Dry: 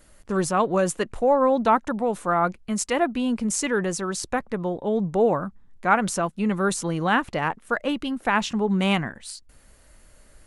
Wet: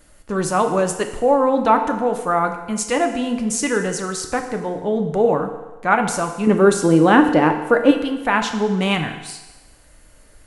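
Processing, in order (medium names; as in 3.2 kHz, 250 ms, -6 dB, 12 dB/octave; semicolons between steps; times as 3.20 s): 6.47–7.91 s: peaking EQ 360 Hz +11.5 dB 1.8 oct; FDN reverb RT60 1.2 s, low-frequency decay 0.75×, high-frequency decay 0.95×, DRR 5 dB; trim +2.5 dB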